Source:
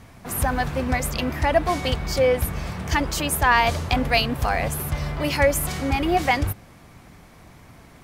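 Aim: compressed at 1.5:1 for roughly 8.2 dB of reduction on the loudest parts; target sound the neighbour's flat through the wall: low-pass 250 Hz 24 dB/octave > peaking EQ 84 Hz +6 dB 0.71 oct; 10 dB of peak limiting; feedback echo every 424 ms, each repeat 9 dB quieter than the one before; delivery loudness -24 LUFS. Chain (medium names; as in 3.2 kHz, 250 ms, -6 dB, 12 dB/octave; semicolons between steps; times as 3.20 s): compression 1.5:1, threshold -36 dBFS; peak limiter -22 dBFS; low-pass 250 Hz 24 dB/octave; peaking EQ 84 Hz +6 dB 0.71 oct; feedback delay 424 ms, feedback 35%, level -9 dB; trim +10.5 dB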